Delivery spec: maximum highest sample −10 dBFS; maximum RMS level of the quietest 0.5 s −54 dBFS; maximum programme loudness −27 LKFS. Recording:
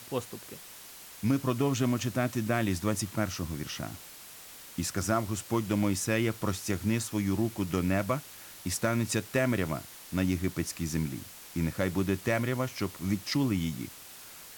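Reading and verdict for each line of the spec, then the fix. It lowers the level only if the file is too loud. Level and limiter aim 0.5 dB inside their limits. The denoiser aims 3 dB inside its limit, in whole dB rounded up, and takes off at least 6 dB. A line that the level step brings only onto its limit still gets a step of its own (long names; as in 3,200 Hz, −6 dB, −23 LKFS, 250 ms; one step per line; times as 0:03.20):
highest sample −17.0 dBFS: in spec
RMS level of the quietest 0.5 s −48 dBFS: out of spec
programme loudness −31.0 LKFS: in spec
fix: broadband denoise 9 dB, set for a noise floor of −48 dBFS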